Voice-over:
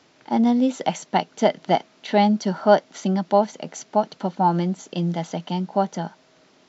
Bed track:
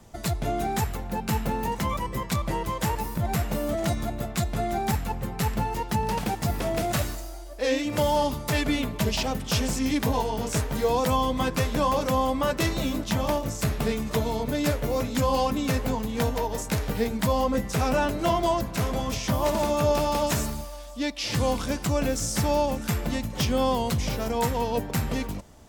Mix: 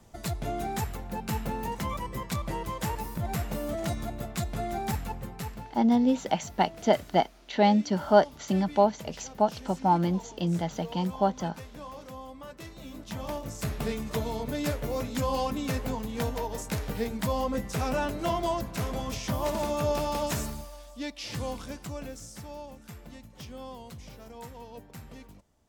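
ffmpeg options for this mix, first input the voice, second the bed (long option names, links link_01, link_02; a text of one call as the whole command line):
ffmpeg -i stem1.wav -i stem2.wav -filter_complex "[0:a]adelay=5450,volume=-4dB[link_01];[1:a]volume=9dB,afade=type=out:start_time=5.06:duration=0.65:silence=0.199526,afade=type=in:start_time=12.76:duration=1.08:silence=0.199526,afade=type=out:start_time=20.45:duration=1.97:silence=0.211349[link_02];[link_01][link_02]amix=inputs=2:normalize=0" out.wav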